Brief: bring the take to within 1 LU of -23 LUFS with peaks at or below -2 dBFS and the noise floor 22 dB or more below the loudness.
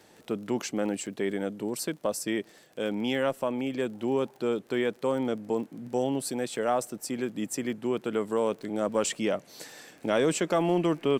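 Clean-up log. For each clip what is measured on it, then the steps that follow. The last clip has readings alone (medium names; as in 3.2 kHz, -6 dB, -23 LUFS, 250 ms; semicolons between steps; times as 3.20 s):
tick rate 33 per s; loudness -30.0 LUFS; peak level -10.5 dBFS; loudness target -23.0 LUFS
-> de-click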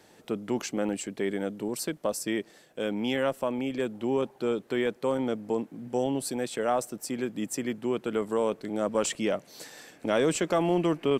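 tick rate 0.089 per s; loudness -30.0 LUFS; peak level -10.5 dBFS; loudness target -23.0 LUFS
-> trim +7 dB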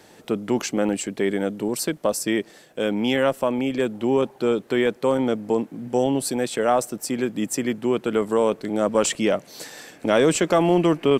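loudness -23.0 LUFS; peak level -3.5 dBFS; noise floor -51 dBFS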